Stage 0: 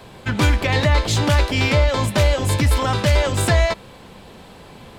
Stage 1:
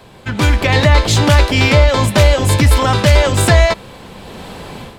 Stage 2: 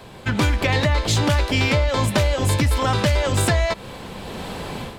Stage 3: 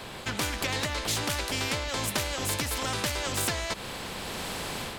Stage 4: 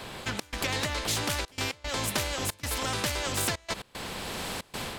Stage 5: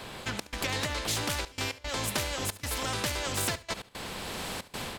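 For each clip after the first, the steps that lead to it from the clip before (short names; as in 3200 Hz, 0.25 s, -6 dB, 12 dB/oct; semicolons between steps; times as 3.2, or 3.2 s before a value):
AGC gain up to 12 dB
compressor, threshold -16 dBFS, peak gain reduction 10.5 dB
spectral compressor 2:1; gain -6 dB
step gate "xxx.xxxxxxx.x.xx" 114 bpm -24 dB
feedback echo 71 ms, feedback 18%, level -17 dB; gain -1.5 dB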